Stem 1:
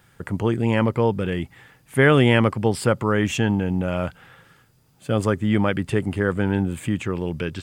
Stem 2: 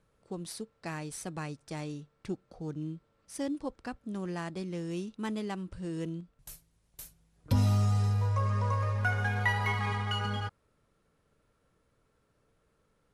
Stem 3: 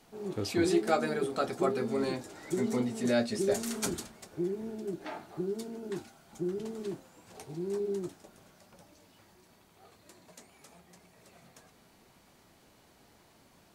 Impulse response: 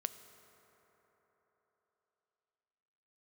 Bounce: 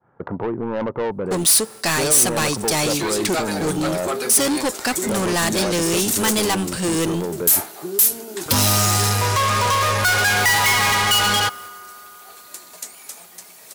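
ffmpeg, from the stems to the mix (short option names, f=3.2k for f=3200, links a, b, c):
-filter_complex "[0:a]agate=range=-33dB:threshold=-51dB:ratio=3:detection=peak,lowpass=f=1k:w=0.5412,lowpass=f=1k:w=1.3066,volume=-11.5dB[a];[1:a]agate=range=-35dB:threshold=-59dB:ratio=16:detection=peak,adelay=1000,volume=2dB,asplit=2[b][c];[c]volume=-17.5dB[d];[2:a]adelay=2450,volume=-14.5dB,asplit=2[e][f];[f]volume=-9.5dB[g];[a][e]amix=inputs=2:normalize=0,acompressor=threshold=-35dB:ratio=3,volume=0dB[h];[3:a]atrim=start_sample=2205[i];[d][g]amix=inputs=2:normalize=0[j];[j][i]afir=irnorm=-1:irlink=0[k];[b][h][k]amix=inputs=3:normalize=0,highshelf=f=9.1k:g=10.5,asplit=2[l][m];[m]highpass=f=720:p=1,volume=31dB,asoftclip=type=tanh:threshold=-12.5dB[n];[l][n]amix=inputs=2:normalize=0,lowpass=f=7.6k:p=1,volume=-6dB,crystalizer=i=2:c=0"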